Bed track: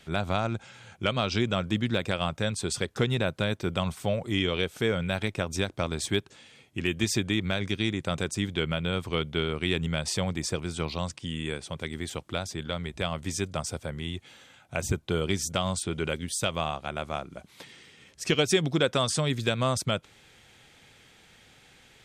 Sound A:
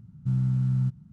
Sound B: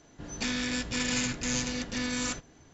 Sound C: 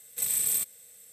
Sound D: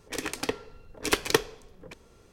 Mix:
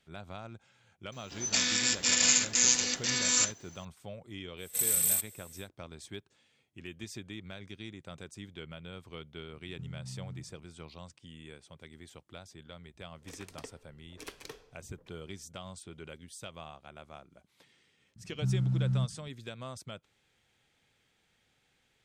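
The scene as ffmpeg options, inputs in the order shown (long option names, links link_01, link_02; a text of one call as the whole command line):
ffmpeg -i bed.wav -i cue0.wav -i cue1.wav -i cue2.wav -i cue3.wav -filter_complex "[1:a]asplit=2[link_01][link_02];[0:a]volume=-16.5dB[link_03];[2:a]aemphasis=mode=production:type=riaa[link_04];[link_01]acompressor=threshold=-30dB:ratio=6:attack=3.2:release=140:knee=1:detection=peak[link_05];[4:a]alimiter=limit=-12dB:level=0:latency=1:release=29[link_06];[link_04]atrim=end=2.73,asetpts=PTS-STARTPTS,volume=-1dB,afade=type=in:duration=0.004:curve=hsin,afade=type=out:start_time=2.726:duration=0.004:curve=hsin,adelay=1120[link_07];[3:a]atrim=end=1.12,asetpts=PTS-STARTPTS,volume=-0.5dB,afade=type=in:duration=0.1,afade=type=out:start_time=1.02:duration=0.1,adelay=201537S[link_08];[link_05]atrim=end=1.12,asetpts=PTS-STARTPTS,volume=-11dB,afade=type=in:duration=0.004:curve=hsin,afade=type=out:start_time=1.116:duration=0.004:curve=hsin,adelay=9530[link_09];[link_06]atrim=end=2.32,asetpts=PTS-STARTPTS,volume=-17dB,afade=type=in:duration=0.004:curve=hsin,afade=type=out:start_time=2.316:duration=0.004:curve=hsin,adelay=13150[link_10];[link_02]atrim=end=1.12,asetpts=PTS-STARTPTS,volume=-4.5dB,afade=type=in:duration=0.004:curve=hsin,afade=type=out:start_time=1.116:duration=0.004:curve=hsin,adelay=18160[link_11];[link_03][link_07][link_08][link_09][link_10][link_11]amix=inputs=6:normalize=0" out.wav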